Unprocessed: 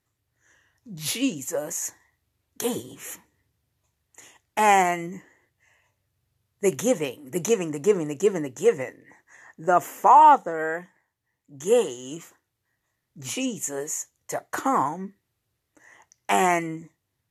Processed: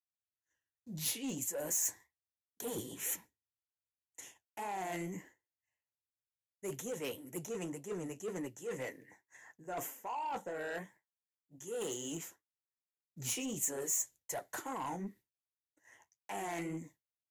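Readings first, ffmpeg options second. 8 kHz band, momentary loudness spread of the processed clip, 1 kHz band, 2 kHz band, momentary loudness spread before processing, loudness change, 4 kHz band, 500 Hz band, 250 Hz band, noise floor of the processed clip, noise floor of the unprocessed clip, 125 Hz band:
-5.5 dB, 17 LU, -22.5 dB, -15.5 dB, 18 LU, -15.5 dB, -11.0 dB, -17.5 dB, -13.5 dB, under -85 dBFS, -79 dBFS, -10.5 dB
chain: -filter_complex "[0:a]acrossover=split=370|1400[s0][s1][s2];[s2]alimiter=limit=0.106:level=0:latency=1:release=278[s3];[s0][s1][s3]amix=inputs=3:normalize=0,agate=range=0.0224:threshold=0.00501:ratio=3:detection=peak,asuperstop=centerf=1200:order=4:qfactor=6.9,highshelf=f=7300:g=-7.5,areverse,acompressor=threshold=0.0316:ratio=20,areverse,flanger=delay=3.3:depth=9.7:regen=-48:speed=1.9:shape=triangular,asoftclip=type=tanh:threshold=0.0224,aemphasis=mode=production:type=50fm"

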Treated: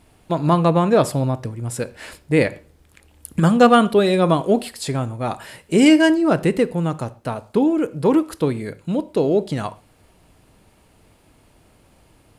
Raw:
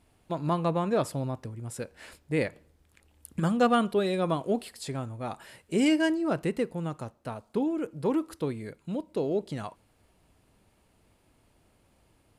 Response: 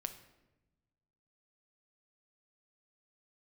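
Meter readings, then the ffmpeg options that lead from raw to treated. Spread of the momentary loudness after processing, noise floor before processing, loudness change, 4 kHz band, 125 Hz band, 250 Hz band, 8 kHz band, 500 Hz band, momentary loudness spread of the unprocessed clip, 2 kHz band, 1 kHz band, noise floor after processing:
15 LU, -67 dBFS, +11.0 dB, +11.0 dB, +11.5 dB, +11.0 dB, +11.0 dB, +11.0 dB, 15 LU, +10.5 dB, +11.0 dB, -56 dBFS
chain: -filter_complex "[0:a]asplit=2[s0][s1];[1:a]atrim=start_sample=2205,afade=t=out:st=0.18:d=0.01,atrim=end_sample=8379[s2];[s1][s2]afir=irnorm=-1:irlink=0,volume=0.841[s3];[s0][s3]amix=inputs=2:normalize=0,volume=2.11"

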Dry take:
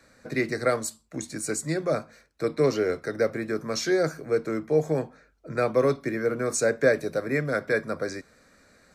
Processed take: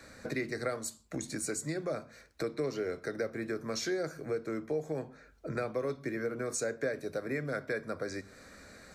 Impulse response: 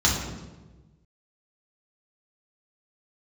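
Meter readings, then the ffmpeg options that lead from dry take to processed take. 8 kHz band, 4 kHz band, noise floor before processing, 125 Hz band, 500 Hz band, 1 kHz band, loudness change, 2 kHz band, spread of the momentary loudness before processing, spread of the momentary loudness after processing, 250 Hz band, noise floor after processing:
-6.0 dB, -6.5 dB, -60 dBFS, -9.0 dB, -10.0 dB, -10.0 dB, -9.5 dB, -9.0 dB, 9 LU, 7 LU, -8.0 dB, -58 dBFS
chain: -filter_complex "[0:a]acompressor=threshold=0.00794:ratio=3,asplit=2[s0][s1];[1:a]atrim=start_sample=2205,afade=t=out:st=0.2:d=0.01,atrim=end_sample=9261[s2];[s1][s2]afir=irnorm=-1:irlink=0,volume=0.0251[s3];[s0][s3]amix=inputs=2:normalize=0,volume=1.78"

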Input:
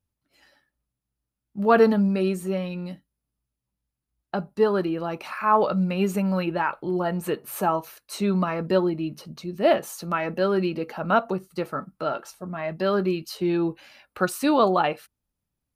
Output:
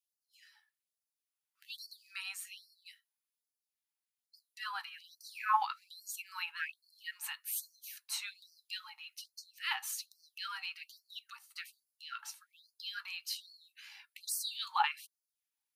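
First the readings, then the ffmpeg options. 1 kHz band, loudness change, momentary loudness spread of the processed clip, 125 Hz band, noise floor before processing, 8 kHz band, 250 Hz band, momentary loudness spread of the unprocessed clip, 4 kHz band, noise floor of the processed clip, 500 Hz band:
-13.0 dB, -15.0 dB, 19 LU, under -40 dB, -85 dBFS, -1.5 dB, under -40 dB, 12 LU, -2.5 dB, under -85 dBFS, under -40 dB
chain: -af "equalizer=f=1200:t=o:w=0.79:g=-7.5,afftfilt=real='re*gte(b*sr/1024,750*pow(4300/750,0.5+0.5*sin(2*PI*1.2*pts/sr)))':imag='im*gte(b*sr/1024,750*pow(4300/750,0.5+0.5*sin(2*PI*1.2*pts/sr)))':win_size=1024:overlap=0.75,volume=0.841"

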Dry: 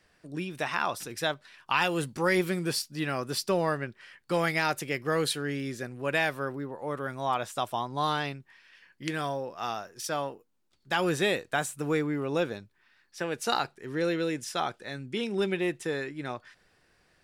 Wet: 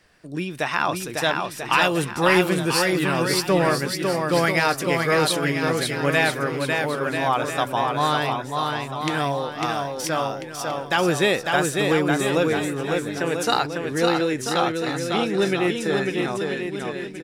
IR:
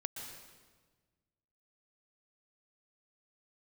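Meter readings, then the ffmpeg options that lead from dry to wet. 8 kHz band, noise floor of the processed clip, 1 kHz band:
+8.5 dB, -35 dBFS, +8.5 dB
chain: -af "aecho=1:1:550|990|1342|1624|1849:0.631|0.398|0.251|0.158|0.1,volume=2.11"

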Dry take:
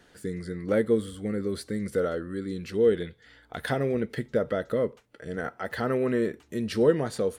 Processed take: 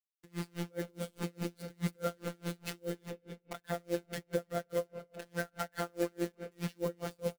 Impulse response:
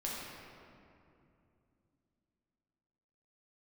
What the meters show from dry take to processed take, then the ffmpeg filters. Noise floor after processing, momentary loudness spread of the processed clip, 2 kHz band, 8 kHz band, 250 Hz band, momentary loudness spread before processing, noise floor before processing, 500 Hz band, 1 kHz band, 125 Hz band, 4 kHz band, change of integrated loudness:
-76 dBFS, 8 LU, -8.0 dB, no reading, -11.0 dB, 11 LU, -59 dBFS, -12.5 dB, -6.5 dB, -7.0 dB, -5.5 dB, -11.0 dB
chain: -filter_complex "[0:a]asplit=2[s0][s1];[s1]acrusher=bits=3:mode=log:mix=0:aa=0.000001,volume=0.355[s2];[s0][s2]amix=inputs=2:normalize=0,deesser=0.75,acrusher=bits=5:mix=0:aa=0.000001,asplit=2[s3][s4];[s4]equalizer=f=2600:w=7.4:g=9.5[s5];[1:a]atrim=start_sample=2205[s6];[s5][s6]afir=irnorm=-1:irlink=0,volume=0.224[s7];[s3][s7]amix=inputs=2:normalize=0,alimiter=limit=0.119:level=0:latency=1:release=216,afftfilt=real='hypot(re,im)*cos(PI*b)':imag='0':win_size=1024:overlap=0.75,asplit=2[s8][s9];[s9]adelay=297.4,volume=0.282,highshelf=f=4000:g=-6.69[s10];[s8][s10]amix=inputs=2:normalize=0,aeval=exprs='val(0)*pow(10,-36*(0.5-0.5*cos(2*PI*4.8*n/s))/20)':c=same,volume=1.12"

